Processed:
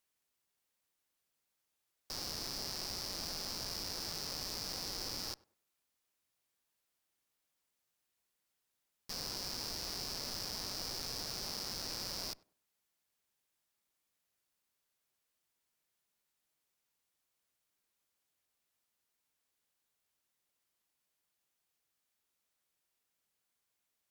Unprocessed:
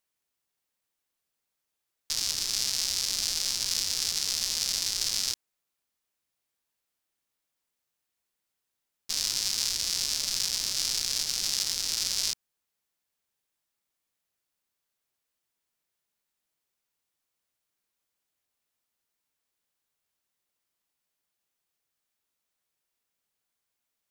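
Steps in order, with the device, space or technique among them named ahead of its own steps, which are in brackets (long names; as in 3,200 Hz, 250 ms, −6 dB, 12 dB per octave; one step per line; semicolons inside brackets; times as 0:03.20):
rockabilly slapback (tube saturation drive 34 dB, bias 0.45; tape delay 97 ms, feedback 29%, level −18.5 dB, low-pass 1,200 Hz)
level +1 dB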